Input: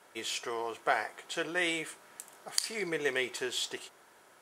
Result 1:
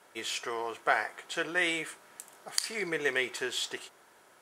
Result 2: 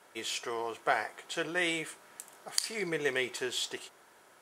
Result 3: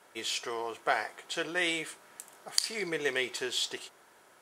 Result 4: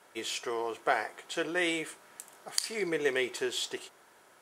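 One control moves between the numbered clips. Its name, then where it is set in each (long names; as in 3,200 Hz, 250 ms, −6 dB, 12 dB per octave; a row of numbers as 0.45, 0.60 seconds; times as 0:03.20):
dynamic equaliser, frequency: 1,600, 140, 4,300, 370 Hertz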